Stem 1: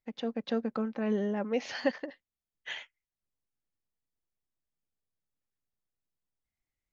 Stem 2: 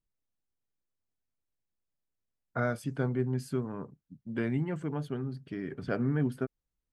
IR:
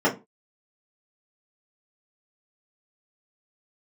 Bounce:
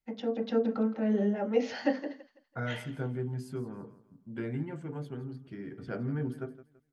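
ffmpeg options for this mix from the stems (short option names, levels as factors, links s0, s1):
-filter_complex "[0:a]volume=0.668,asplit=3[s0][s1][s2];[s1]volume=0.168[s3];[s2]volume=0.188[s4];[1:a]volume=0.501,asplit=3[s5][s6][s7];[s6]volume=0.075[s8];[s7]volume=0.168[s9];[2:a]atrim=start_sample=2205[s10];[s3][s8]amix=inputs=2:normalize=0[s11];[s11][s10]afir=irnorm=-1:irlink=0[s12];[s4][s9]amix=inputs=2:normalize=0,aecho=0:1:167|334|501|668|835:1|0.33|0.109|0.0359|0.0119[s13];[s0][s5][s12][s13]amix=inputs=4:normalize=0"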